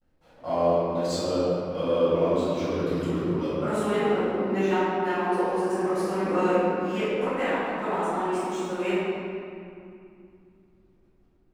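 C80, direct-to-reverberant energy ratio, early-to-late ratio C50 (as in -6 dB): -3.0 dB, -17.5 dB, -5.0 dB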